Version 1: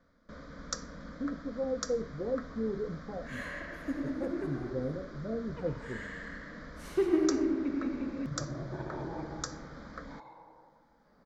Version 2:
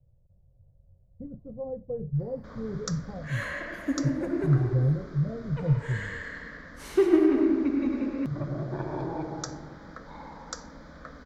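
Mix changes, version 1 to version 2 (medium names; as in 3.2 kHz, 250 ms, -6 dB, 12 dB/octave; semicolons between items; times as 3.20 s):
speech: add resonant low shelf 190 Hz +11.5 dB, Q 3; first sound: entry +2.15 s; second sound +6.5 dB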